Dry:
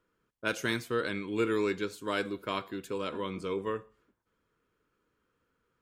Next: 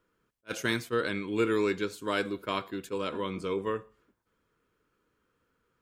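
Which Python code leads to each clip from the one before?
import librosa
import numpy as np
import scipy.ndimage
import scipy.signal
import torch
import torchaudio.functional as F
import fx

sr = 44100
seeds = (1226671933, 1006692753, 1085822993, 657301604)

y = fx.attack_slew(x, sr, db_per_s=580.0)
y = y * 10.0 ** (2.0 / 20.0)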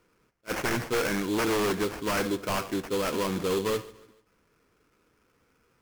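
y = fx.sample_hold(x, sr, seeds[0], rate_hz=3800.0, jitter_pct=20)
y = fx.fold_sine(y, sr, drive_db=12, ceiling_db=-14.0)
y = fx.echo_feedback(y, sr, ms=145, feedback_pct=43, wet_db=-20.0)
y = y * 10.0 ** (-8.5 / 20.0)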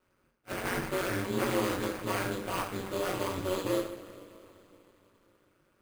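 y = fx.rev_double_slope(x, sr, seeds[1], early_s=0.45, late_s=3.7, knee_db=-21, drr_db=-5.5)
y = y * np.sin(2.0 * np.pi * 94.0 * np.arange(len(y)) / sr)
y = np.repeat(scipy.signal.resample_poly(y, 1, 4), 4)[:len(y)]
y = y * 10.0 ** (-7.0 / 20.0)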